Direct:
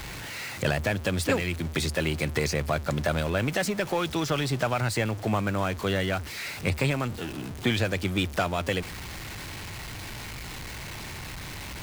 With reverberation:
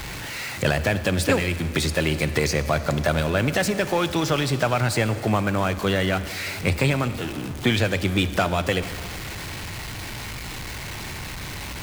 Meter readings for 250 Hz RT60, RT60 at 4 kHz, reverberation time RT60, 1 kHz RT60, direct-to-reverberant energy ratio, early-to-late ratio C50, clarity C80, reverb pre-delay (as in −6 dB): 2.6 s, 2.3 s, 2.5 s, 2.4 s, 12.0 dB, 12.5 dB, 13.0 dB, 37 ms